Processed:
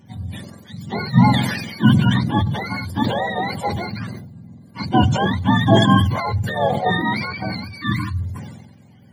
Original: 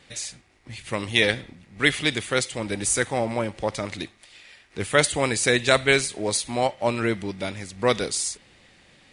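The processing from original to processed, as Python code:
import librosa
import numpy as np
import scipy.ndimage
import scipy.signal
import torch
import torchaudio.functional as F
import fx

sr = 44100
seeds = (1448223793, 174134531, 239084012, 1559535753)

y = fx.octave_mirror(x, sr, pivot_hz=660.0)
y = fx.spec_erase(y, sr, start_s=7.81, length_s=0.39, low_hz=340.0, high_hz=980.0)
y = fx.notch_comb(y, sr, f0_hz=1300.0)
y = fx.sustainer(y, sr, db_per_s=46.0)
y = y * librosa.db_to_amplitude(4.5)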